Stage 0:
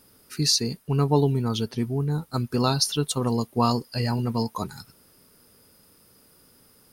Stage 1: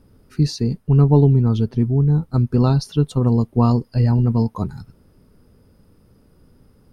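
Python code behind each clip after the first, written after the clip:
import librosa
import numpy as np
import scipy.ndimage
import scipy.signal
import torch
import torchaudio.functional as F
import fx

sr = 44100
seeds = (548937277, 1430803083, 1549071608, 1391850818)

y = fx.tilt_eq(x, sr, slope=-4.0)
y = F.gain(torch.from_numpy(y), -1.0).numpy()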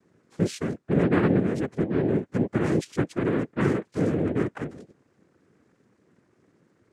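y = fx.noise_vocoder(x, sr, seeds[0], bands=3)
y = F.gain(torch.from_numpy(y), -8.0).numpy()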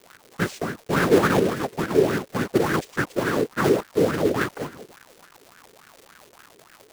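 y = fx.block_float(x, sr, bits=3)
y = fx.dmg_crackle(y, sr, seeds[1], per_s=300.0, level_db=-34.0)
y = fx.bell_lfo(y, sr, hz=3.5, low_hz=410.0, high_hz=1600.0, db=16)
y = F.gain(torch.from_numpy(y), -2.5).numpy()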